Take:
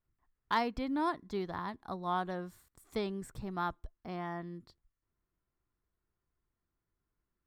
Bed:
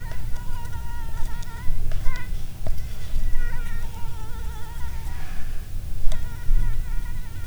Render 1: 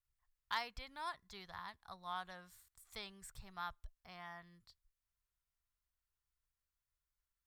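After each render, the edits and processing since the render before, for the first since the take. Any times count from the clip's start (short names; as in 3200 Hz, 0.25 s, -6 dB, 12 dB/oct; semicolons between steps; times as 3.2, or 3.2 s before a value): passive tone stack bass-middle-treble 10-0-10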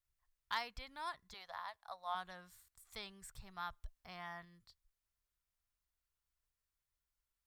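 1.34–2.15 resonant low shelf 420 Hz -13 dB, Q 3; 3.73–4.45 gain +3 dB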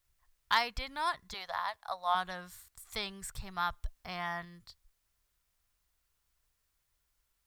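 gain +11 dB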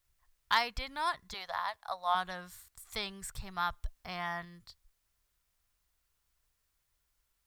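nothing audible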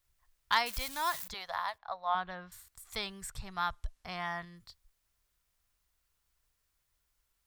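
0.66–1.28 switching spikes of -31 dBFS; 1.78–2.52 air absorption 250 m; 3.3–4.57 LPF 11000 Hz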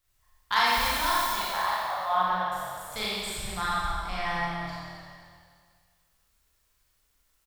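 frequency-shifting echo 0.258 s, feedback 42%, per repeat -40 Hz, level -12.5 dB; Schroeder reverb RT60 1.8 s, combs from 29 ms, DRR -7.5 dB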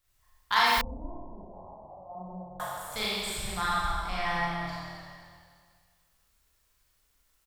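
0.81–2.6 Gaussian blur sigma 17 samples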